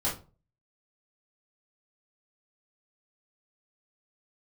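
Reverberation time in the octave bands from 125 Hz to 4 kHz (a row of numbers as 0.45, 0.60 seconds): 0.50, 0.40, 0.35, 0.30, 0.25, 0.25 seconds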